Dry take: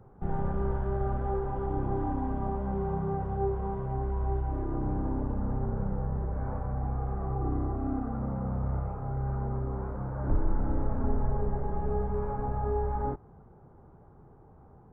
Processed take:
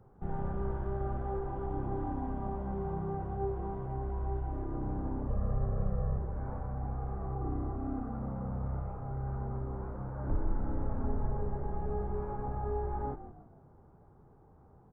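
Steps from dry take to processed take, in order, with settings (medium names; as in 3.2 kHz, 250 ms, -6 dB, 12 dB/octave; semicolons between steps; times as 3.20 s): 5.27–6.18 s: comb 1.7 ms, depth 95%; frequency-shifting echo 162 ms, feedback 39%, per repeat -53 Hz, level -13 dB; trim -5 dB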